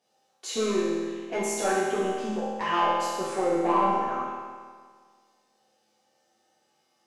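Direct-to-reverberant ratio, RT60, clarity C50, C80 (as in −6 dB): −11.0 dB, 1.7 s, −2.0 dB, 0.0 dB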